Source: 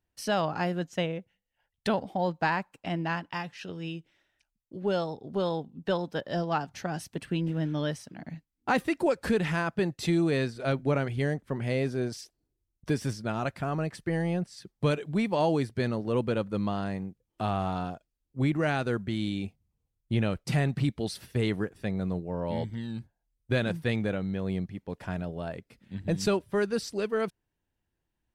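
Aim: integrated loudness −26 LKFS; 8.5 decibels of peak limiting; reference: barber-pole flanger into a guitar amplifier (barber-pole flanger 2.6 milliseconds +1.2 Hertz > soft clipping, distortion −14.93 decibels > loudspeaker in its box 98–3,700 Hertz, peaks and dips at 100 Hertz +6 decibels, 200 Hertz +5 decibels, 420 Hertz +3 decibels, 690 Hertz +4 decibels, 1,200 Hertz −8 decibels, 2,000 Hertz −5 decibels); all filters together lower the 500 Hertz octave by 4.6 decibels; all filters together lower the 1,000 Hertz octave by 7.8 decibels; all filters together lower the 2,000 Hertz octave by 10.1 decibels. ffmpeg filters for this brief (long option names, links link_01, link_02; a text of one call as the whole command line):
ffmpeg -i in.wav -filter_complex "[0:a]equalizer=frequency=500:width_type=o:gain=-6.5,equalizer=frequency=1000:width_type=o:gain=-8,equalizer=frequency=2000:width_type=o:gain=-6.5,alimiter=level_in=1.5dB:limit=-24dB:level=0:latency=1,volume=-1.5dB,asplit=2[link_01][link_02];[link_02]adelay=2.6,afreqshift=1.2[link_03];[link_01][link_03]amix=inputs=2:normalize=1,asoftclip=threshold=-33dB,highpass=98,equalizer=frequency=100:width_type=q:width=4:gain=6,equalizer=frequency=200:width_type=q:width=4:gain=5,equalizer=frequency=420:width_type=q:width=4:gain=3,equalizer=frequency=690:width_type=q:width=4:gain=4,equalizer=frequency=1200:width_type=q:width=4:gain=-8,equalizer=frequency=2000:width_type=q:width=4:gain=-5,lowpass=frequency=3700:width=0.5412,lowpass=frequency=3700:width=1.3066,volume=13.5dB" out.wav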